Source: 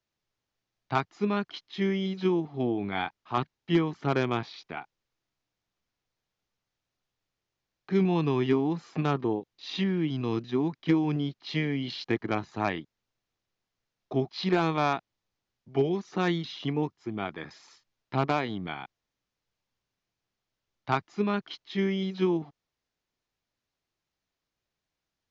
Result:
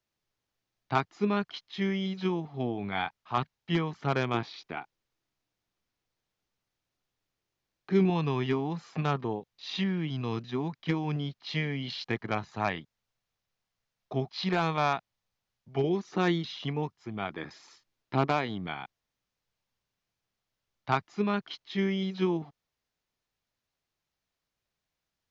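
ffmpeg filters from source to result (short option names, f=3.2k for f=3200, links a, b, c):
-af "asetnsamples=n=441:p=0,asendcmd='1.42 equalizer g -7.5;4.34 equalizer g 1.5;8.1 equalizer g -8.5;15.84 equalizer g 1;16.45 equalizer g -8;17.3 equalizer g 2.5;18.27 equalizer g -3.5',equalizer=f=320:t=o:w=0.7:g=0"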